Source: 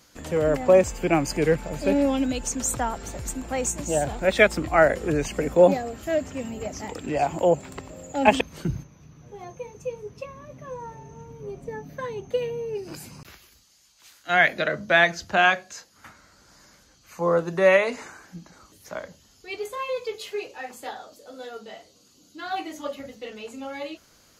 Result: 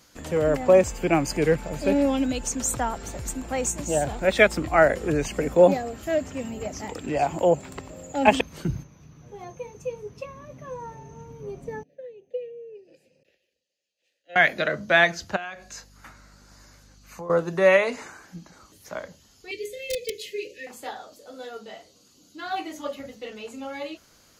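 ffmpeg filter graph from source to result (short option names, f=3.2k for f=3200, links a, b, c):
-filter_complex "[0:a]asettb=1/sr,asplit=3[a][b][c];[a]atrim=end=11.834[d];[b]atrim=start=11.83:end=14.36,asetpts=PTS-STARTPTS,afade=t=in:d=0.004:c=qsin,afade=t=out:st=2.526:d=0.004:c=qsin,asplit=3[e][f][g];[e]bandpass=f=530:t=q:w=8,volume=0dB[h];[f]bandpass=f=1.84k:t=q:w=8,volume=-6dB[i];[g]bandpass=f=2.48k:t=q:w=8,volume=-9dB[j];[h][i][j]amix=inputs=3:normalize=0,equalizer=f=1.4k:w=0.97:g=-15[k];[c]atrim=start=14.356[l];[d][k]acrossfade=d=0.004:c1=hsin:c2=qsin[m];[m][l]acrossfade=d=0.004:c1=qsin:c2=hsin,asettb=1/sr,asplit=3[n][o][p];[n]atrim=end=15.364[q];[o]atrim=start=15.36:end=17.3,asetpts=PTS-STARTPTS,afade=t=in:d=0.004:c=qsin,afade=t=out:st=1.936:d=0.004:c=qsin,bandreject=f=3.2k:w=15,aeval=exprs='val(0)+0.00224*(sin(2*PI*50*n/s)+sin(2*PI*2*50*n/s)/2+sin(2*PI*3*50*n/s)/3+sin(2*PI*4*50*n/s)/4+sin(2*PI*5*50*n/s)/5)':c=same,acompressor=threshold=-34dB:ratio=5:attack=3.2:release=140:knee=1:detection=peak[r];[p]atrim=start=17.296[s];[q][r]acrossfade=d=0.004:c1=hsin:c2=qsin[t];[t][s]acrossfade=d=0.004:c1=qsin:c2=hsin,asettb=1/sr,asplit=3[u][v][w];[u]atrim=end=19.514[x];[v]atrim=start=19.51:end=20.67,asetpts=PTS-STARTPTS,afade=t=in:d=0.004:c=qsin,afade=t=out:st=1.156:d=0.004:c=qsin,bandreject=f=60:t=h:w=6,bandreject=f=120:t=h:w=6,bandreject=f=180:t=h:w=6,bandreject=f=240:t=h:w=6,bandreject=f=300:t=h:w=6,bandreject=f=360:t=h:w=6,bandreject=f=420:t=h:w=6,bandreject=f=480:t=h:w=6,aeval=exprs='(mod(11.9*val(0)+1,2)-1)/11.9':c=same,asuperstop=centerf=1000:order=20:qfactor=0.81[y];[w]atrim=start=20.666[z];[x][y]acrossfade=d=0.004:c1=hsin:c2=qsin[aa];[aa][z]acrossfade=d=0.004:c1=qsin:c2=hsin"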